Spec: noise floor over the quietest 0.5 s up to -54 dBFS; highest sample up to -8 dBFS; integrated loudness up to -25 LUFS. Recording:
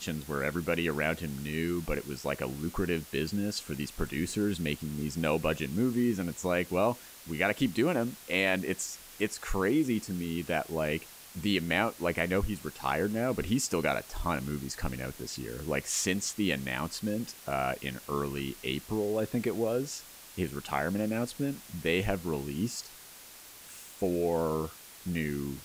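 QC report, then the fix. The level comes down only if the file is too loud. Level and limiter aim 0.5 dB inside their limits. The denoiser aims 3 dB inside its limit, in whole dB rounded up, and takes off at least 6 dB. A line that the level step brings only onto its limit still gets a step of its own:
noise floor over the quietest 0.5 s -50 dBFS: fail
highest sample -12.5 dBFS: pass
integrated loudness -32.0 LUFS: pass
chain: noise reduction 7 dB, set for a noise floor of -50 dBFS

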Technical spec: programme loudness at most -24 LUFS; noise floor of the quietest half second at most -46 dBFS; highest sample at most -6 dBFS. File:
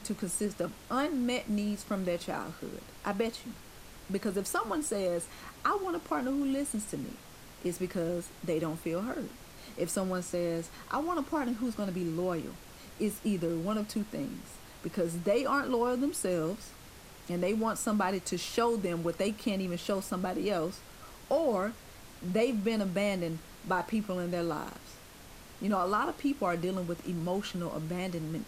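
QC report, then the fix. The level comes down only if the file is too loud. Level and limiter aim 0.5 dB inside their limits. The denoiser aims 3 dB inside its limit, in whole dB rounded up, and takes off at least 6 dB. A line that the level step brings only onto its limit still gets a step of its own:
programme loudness -33.0 LUFS: pass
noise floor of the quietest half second -51 dBFS: pass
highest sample -16.0 dBFS: pass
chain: none needed

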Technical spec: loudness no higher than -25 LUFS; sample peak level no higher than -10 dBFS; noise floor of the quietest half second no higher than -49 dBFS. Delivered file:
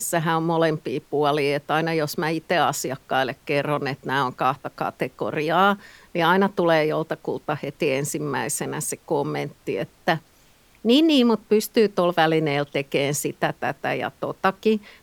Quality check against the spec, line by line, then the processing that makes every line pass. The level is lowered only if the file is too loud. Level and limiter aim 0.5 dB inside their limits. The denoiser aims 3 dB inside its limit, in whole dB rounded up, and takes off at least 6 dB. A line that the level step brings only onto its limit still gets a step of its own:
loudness -23.0 LUFS: fail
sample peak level -4.5 dBFS: fail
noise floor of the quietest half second -56 dBFS: pass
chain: trim -2.5 dB; peak limiter -10.5 dBFS

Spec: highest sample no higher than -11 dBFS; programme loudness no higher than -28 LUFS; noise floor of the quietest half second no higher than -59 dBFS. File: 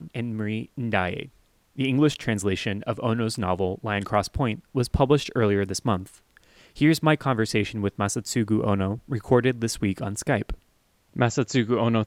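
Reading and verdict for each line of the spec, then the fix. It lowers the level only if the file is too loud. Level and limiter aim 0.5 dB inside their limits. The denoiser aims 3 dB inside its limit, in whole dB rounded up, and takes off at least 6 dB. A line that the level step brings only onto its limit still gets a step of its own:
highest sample -6.5 dBFS: fail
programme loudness -25.0 LUFS: fail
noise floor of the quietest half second -64 dBFS: pass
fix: trim -3.5 dB; peak limiter -11.5 dBFS

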